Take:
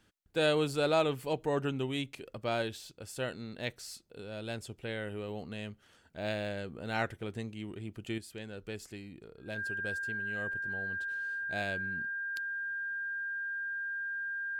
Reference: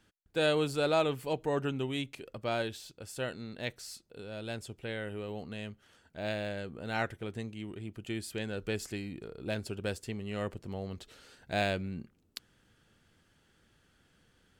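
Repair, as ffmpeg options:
ffmpeg -i in.wav -af "bandreject=frequency=1600:width=30,asetnsamples=nb_out_samples=441:pad=0,asendcmd='8.18 volume volume 7dB',volume=0dB" out.wav

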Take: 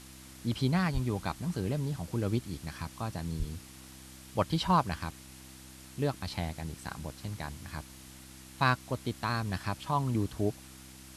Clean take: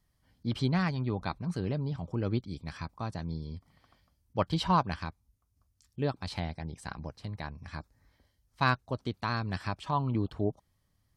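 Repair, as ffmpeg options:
ffmpeg -i in.wav -filter_complex "[0:a]bandreject=frequency=65.2:width_type=h:width=4,bandreject=frequency=130.4:width_type=h:width=4,bandreject=frequency=195.6:width_type=h:width=4,bandreject=frequency=260.8:width_type=h:width=4,bandreject=frequency=326:width_type=h:width=4,asplit=3[link_01][link_02][link_03];[link_01]afade=type=out:start_time=0.93:duration=0.02[link_04];[link_02]highpass=frequency=140:width=0.5412,highpass=frequency=140:width=1.3066,afade=type=in:start_time=0.93:duration=0.02,afade=type=out:start_time=1.05:duration=0.02[link_05];[link_03]afade=type=in:start_time=1.05:duration=0.02[link_06];[link_04][link_05][link_06]amix=inputs=3:normalize=0,asplit=3[link_07][link_08][link_09];[link_07]afade=type=out:start_time=3.38:duration=0.02[link_10];[link_08]highpass=frequency=140:width=0.5412,highpass=frequency=140:width=1.3066,afade=type=in:start_time=3.38:duration=0.02,afade=type=out:start_time=3.5:duration=0.02[link_11];[link_09]afade=type=in:start_time=3.5:duration=0.02[link_12];[link_10][link_11][link_12]amix=inputs=3:normalize=0,afftdn=noise_reduction=22:noise_floor=-51" out.wav

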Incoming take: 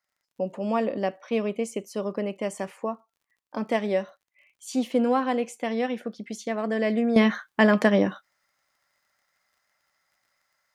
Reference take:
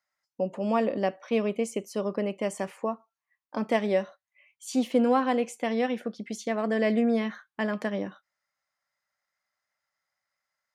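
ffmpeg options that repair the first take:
ffmpeg -i in.wav -af "adeclick=threshold=4,asetnsamples=nb_out_samples=441:pad=0,asendcmd='7.16 volume volume -10.5dB',volume=0dB" out.wav

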